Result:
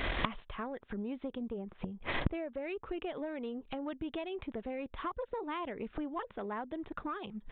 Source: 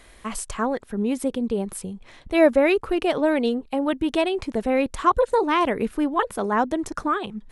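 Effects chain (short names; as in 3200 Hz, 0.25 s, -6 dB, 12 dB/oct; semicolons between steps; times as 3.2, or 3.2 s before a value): compressor 12:1, threshold -25 dBFS, peak gain reduction 15.5 dB; 1.43–2.52 air absorption 280 m; flipped gate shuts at -31 dBFS, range -29 dB; added harmonics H 3 -12 dB, 7 -13 dB, 8 -25 dB, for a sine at -30.5 dBFS; downsampling 8000 Hz; gain +17.5 dB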